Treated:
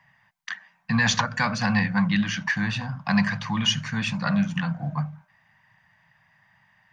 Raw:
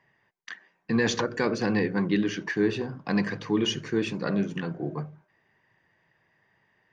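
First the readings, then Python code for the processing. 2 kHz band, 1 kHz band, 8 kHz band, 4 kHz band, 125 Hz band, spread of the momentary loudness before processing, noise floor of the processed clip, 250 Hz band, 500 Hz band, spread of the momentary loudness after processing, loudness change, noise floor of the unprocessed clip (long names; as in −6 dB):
+7.0 dB, +7.0 dB, can't be measured, +6.5 dB, +6.5 dB, 13 LU, −64 dBFS, +1.5 dB, −11.5 dB, 13 LU, +3.0 dB, −70 dBFS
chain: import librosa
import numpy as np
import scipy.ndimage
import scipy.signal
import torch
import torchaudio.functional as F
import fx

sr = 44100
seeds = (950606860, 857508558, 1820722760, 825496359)

y = scipy.signal.sosfilt(scipy.signal.cheby1(2, 1.0, [180.0, 800.0], 'bandstop', fs=sr, output='sos'), x)
y = y * 10.0 ** (7.5 / 20.0)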